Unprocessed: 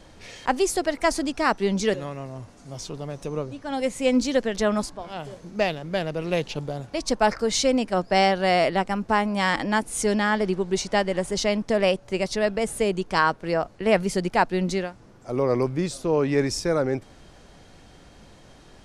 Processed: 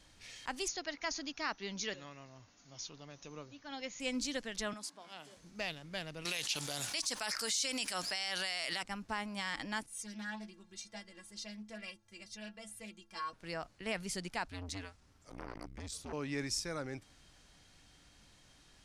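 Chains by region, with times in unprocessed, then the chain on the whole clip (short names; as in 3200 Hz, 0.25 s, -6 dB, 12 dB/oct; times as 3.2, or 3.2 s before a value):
0.68–4 brick-wall FIR low-pass 7000 Hz + low shelf 160 Hz -9 dB
4.73–5.37 HPF 190 Hz 24 dB/oct + compressor 10:1, threshold -28 dBFS
6.25–8.83 tilt +4 dB/oct + fast leveller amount 50%
9.86–13.33 metallic resonator 100 Hz, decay 0.31 s, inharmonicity 0.03 + Doppler distortion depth 0.14 ms
14.47–16.13 frequency shift -96 Hz + core saturation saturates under 800 Hz
whole clip: passive tone stack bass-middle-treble 5-5-5; limiter -24.5 dBFS; bell 290 Hz +5.5 dB 0.22 oct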